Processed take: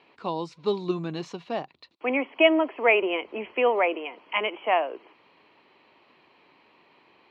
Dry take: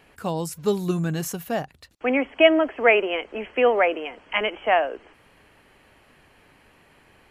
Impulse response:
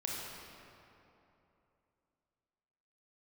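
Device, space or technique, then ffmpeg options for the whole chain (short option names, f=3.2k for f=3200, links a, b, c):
kitchen radio: -filter_complex "[0:a]highpass=210,equalizer=f=350:t=q:w=4:g=5,equalizer=f=1k:t=q:w=4:g=8,equalizer=f=1.6k:t=q:w=4:g=-7,equalizer=f=2.4k:t=q:w=4:g=4,equalizer=f=4k:t=q:w=4:g=7,lowpass=f=4.6k:w=0.5412,lowpass=f=4.6k:w=1.3066,asettb=1/sr,asplit=3[a][b][c];[a]atrim=end=3.024[d];[b]atrim=start=3.02:end=3.53,asetpts=PTS-STARTPTS,afade=t=in:d=0.004:c=qsin,afade=t=out:st=0.506:d=0.004:c=qsin,lowshelf=f=180:g=10.5[e];[c]atrim=start=3.526[f];[d][e]acrossfade=d=0.004:c1=hsin:c2=qsin[g];[g][f]acrossfade=d=0.004:c1=qsin:c2=hsin,volume=-4.5dB"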